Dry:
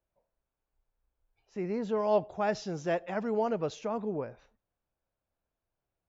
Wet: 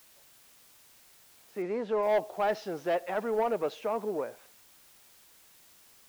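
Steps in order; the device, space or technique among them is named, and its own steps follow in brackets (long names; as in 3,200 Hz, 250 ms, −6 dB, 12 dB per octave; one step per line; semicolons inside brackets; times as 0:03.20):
tape answering machine (band-pass filter 350–3,200 Hz; soft clipping −25 dBFS, distortion −14 dB; tape wow and flutter 27 cents; white noise bed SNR 25 dB)
0:01.62–0:02.03: low-pass filter 5,400 Hz 12 dB per octave
level +4.5 dB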